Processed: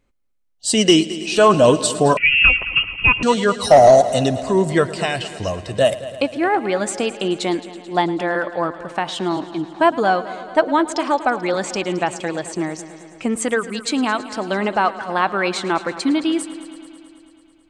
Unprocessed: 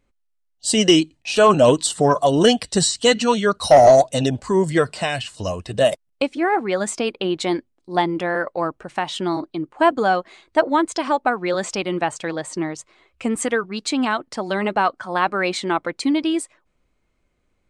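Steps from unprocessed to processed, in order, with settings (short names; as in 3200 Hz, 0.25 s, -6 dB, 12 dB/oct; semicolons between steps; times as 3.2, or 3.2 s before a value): on a send: multi-head echo 0.109 s, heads first and second, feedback 66%, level -18.5 dB; 2.17–3.23 on the sum: inverted band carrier 3000 Hz; gain +1 dB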